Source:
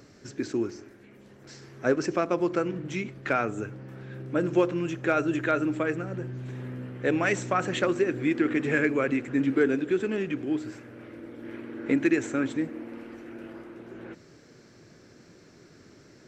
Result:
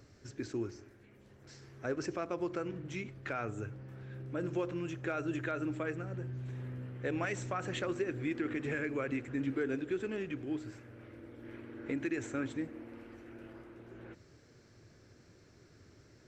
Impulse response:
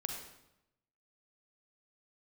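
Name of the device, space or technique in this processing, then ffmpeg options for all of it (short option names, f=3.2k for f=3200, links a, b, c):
car stereo with a boomy subwoofer: -af "lowshelf=f=130:t=q:w=1.5:g=7.5,alimiter=limit=-17dB:level=0:latency=1:release=82,volume=-8dB"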